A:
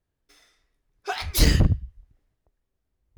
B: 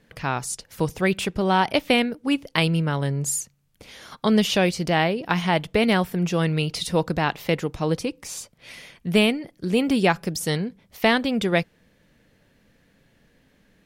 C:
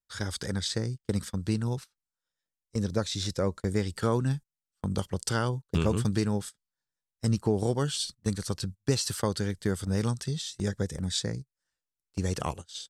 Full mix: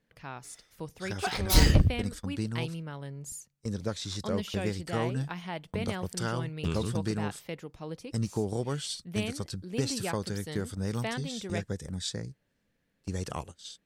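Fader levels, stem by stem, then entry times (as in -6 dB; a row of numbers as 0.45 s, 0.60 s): -2.5 dB, -16.0 dB, -4.5 dB; 0.15 s, 0.00 s, 0.90 s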